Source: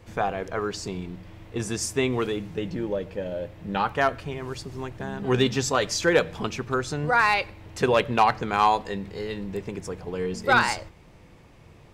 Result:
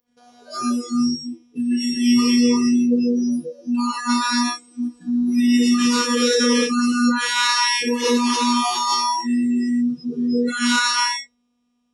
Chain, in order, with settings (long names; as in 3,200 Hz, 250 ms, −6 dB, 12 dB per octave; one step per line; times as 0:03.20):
samples sorted by size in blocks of 8 samples
downsampling to 22,050 Hz
phases set to zero 242 Hz
reverb whose tail is shaped and stops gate 500 ms flat, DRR −5 dB
brickwall limiter −14 dBFS, peak gain reduction 10.5 dB
high-pass filter 160 Hz 6 dB per octave
flutter between parallel walls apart 10 metres, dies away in 0.29 s
noise reduction from a noise print of the clip's start 29 dB
level +6 dB